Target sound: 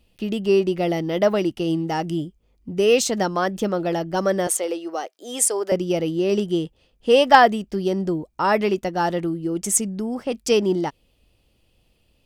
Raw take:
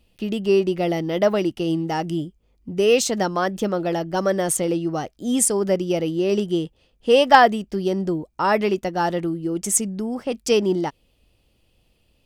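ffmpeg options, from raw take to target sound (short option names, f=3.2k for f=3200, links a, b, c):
-filter_complex "[0:a]asettb=1/sr,asplit=3[a][b][c];[a]atrim=end=4.474[d];[b]atrim=start=4.47:end=5.72,asetpts=PTS-STARTPTS,afade=t=in:d=0.004:c=qsin,afade=t=out:st=1.246:d=0.004:c=qsin,highpass=f=390:w=0.5412,highpass=f=390:w=1.3066[e];[c]atrim=start=5.716[f];[d][e]acrossfade=d=0.004:c1=hsin:c2=qsin[g];[g][f]acrossfade=d=0.004:c1=qsin:c2=hsin"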